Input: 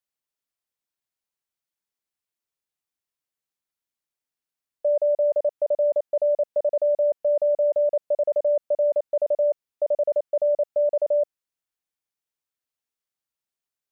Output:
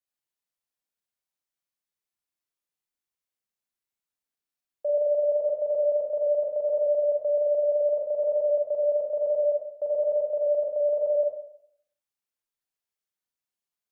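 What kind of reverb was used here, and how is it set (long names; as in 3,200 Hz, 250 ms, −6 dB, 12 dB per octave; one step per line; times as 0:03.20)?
four-comb reverb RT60 0.67 s, combs from 31 ms, DRR −1.5 dB
level −6 dB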